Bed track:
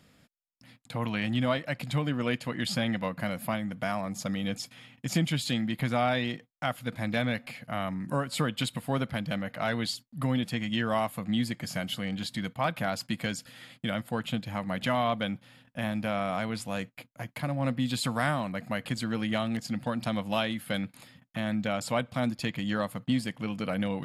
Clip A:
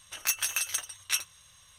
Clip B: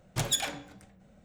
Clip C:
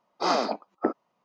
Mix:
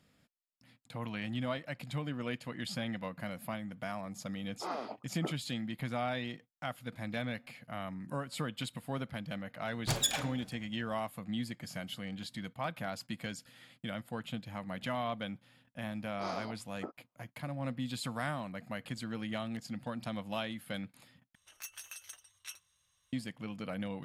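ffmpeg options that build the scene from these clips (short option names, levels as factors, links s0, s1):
-filter_complex "[3:a]asplit=2[s0][s1];[0:a]volume=0.376[s2];[s0]acrossover=split=3200[s3][s4];[s4]acompressor=threshold=0.00501:ratio=4:attack=1:release=60[s5];[s3][s5]amix=inputs=2:normalize=0[s6];[s2]asplit=2[s7][s8];[s7]atrim=end=21.354[s9];[1:a]atrim=end=1.78,asetpts=PTS-STARTPTS,volume=0.126[s10];[s8]atrim=start=23.126[s11];[s6]atrim=end=1.24,asetpts=PTS-STARTPTS,volume=0.2,afade=t=in:d=0.004:c=hsin,afade=t=out:st=1.236:d=0.004:c=hsin,adelay=4400[s12];[2:a]atrim=end=1.24,asetpts=PTS-STARTPTS,volume=0.794,afade=t=in:d=0.004:c=hsin,afade=t=out:st=1.236:d=0.004:c=hsin,adelay=9710[s13];[s1]atrim=end=1.24,asetpts=PTS-STARTPTS,volume=0.141,afade=t=in:d=0.004:c=hsin,afade=t=out:st=1.236:d=0.004:c=hsin,adelay=15990[s14];[s9][s10]acrossfade=d=0.004:c1=hsin:c2=hsin[s15];[s15][s11]acrossfade=d=0.004:c1=hsin:c2=hsin[s16];[s16][s12][s13][s14]amix=inputs=4:normalize=0"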